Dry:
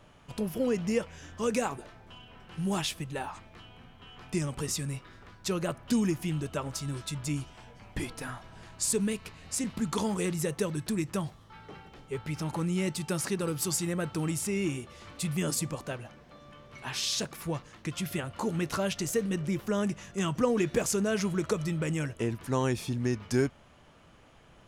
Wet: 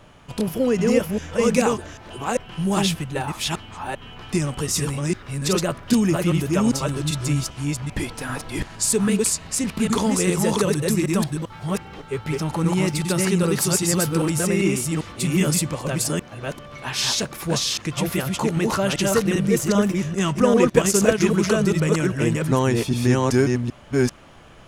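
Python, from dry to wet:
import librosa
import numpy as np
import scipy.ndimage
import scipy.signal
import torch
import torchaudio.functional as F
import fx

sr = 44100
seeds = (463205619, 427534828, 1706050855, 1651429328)

y = fx.reverse_delay(x, sr, ms=395, wet_db=-1.0)
y = fx.transient(y, sr, attack_db=5, sustain_db=-11, at=(20.68, 21.24), fade=0.02)
y = F.gain(torch.from_numpy(y), 8.0).numpy()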